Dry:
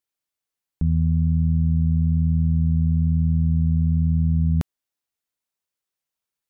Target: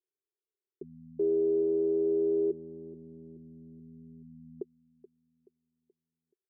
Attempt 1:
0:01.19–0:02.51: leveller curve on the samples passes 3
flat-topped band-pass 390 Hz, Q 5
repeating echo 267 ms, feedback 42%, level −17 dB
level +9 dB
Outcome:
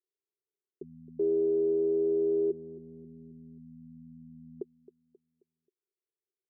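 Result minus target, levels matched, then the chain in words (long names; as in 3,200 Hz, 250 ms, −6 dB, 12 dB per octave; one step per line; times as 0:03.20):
echo 161 ms early
0:01.19–0:02.51: leveller curve on the samples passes 3
flat-topped band-pass 390 Hz, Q 5
repeating echo 428 ms, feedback 42%, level −17 dB
level +9 dB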